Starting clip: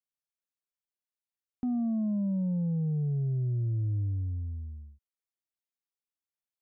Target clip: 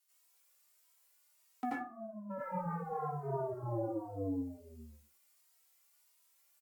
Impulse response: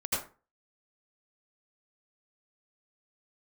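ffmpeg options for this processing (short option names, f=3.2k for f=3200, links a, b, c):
-filter_complex "[0:a]asplit=3[a][b][c];[a]afade=t=out:st=1.69:d=0.02[d];[b]agate=range=-33dB:threshold=-17dB:ratio=3:detection=peak,afade=t=in:st=1.69:d=0.02,afade=t=out:st=2.29:d=0.02[e];[c]afade=t=in:st=2.29:d=0.02[f];[d][e][f]amix=inputs=3:normalize=0,asoftclip=type=tanh:threshold=-30dB,highpass=600,asplit=2[g][h];[h]adelay=18,volume=-9.5dB[i];[g][i]amix=inputs=2:normalize=0[j];[1:a]atrim=start_sample=2205,asetrate=41895,aresample=44100[k];[j][k]afir=irnorm=-1:irlink=0,afftfilt=real='re*lt(hypot(re,im),0.0501)':imag='im*lt(hypot(re,im),0.0501)':win_size=1024:overlap=0.75,aemphasis=mode=production:type=cd,asplit=2[l][m];[m]adelay=2.9,afreqshift=1.5[n];[l][n]amix=inputs=2:normalize=1,volume=14.5dB"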